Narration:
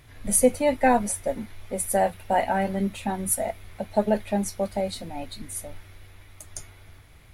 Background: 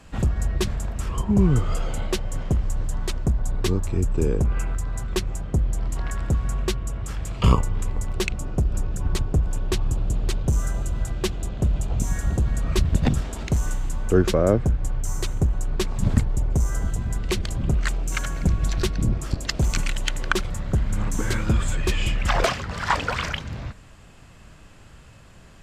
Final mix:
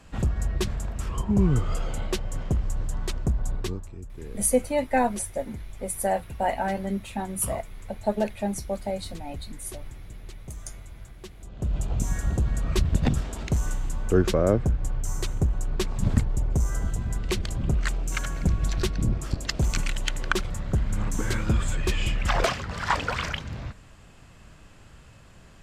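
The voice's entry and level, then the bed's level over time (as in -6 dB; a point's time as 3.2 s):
4.10 s, -3.0 dB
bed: 3.53 s -3 dB
3.97 s -18 dB
11.36 s -18 dB
11.77 s -2.5 dB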